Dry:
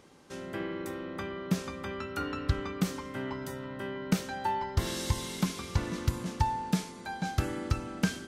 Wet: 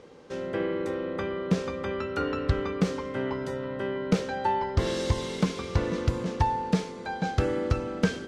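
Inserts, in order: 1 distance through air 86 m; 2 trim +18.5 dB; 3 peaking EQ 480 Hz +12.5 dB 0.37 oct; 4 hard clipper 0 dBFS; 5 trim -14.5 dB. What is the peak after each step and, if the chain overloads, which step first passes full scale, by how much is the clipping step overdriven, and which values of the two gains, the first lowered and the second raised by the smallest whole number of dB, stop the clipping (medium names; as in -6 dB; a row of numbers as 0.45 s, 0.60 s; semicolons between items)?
-14.0 dBFS, +4.5 dBFS, +6.5 dBFS, 0.0 dBFS, -14.5 dBFS; step 2, 6.5 dB; step 2 +11.5 dB, step 5 -7.5 dB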